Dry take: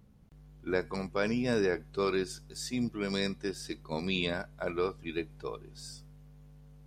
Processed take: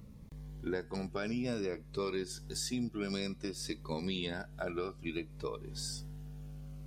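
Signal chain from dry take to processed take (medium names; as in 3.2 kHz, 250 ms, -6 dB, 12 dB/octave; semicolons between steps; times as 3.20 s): compression 3:1, threshold -44 dBFS, peak gain reduction 14.5 dB; Shepard-style phaser falling 0.57 Hz; trim +8 dB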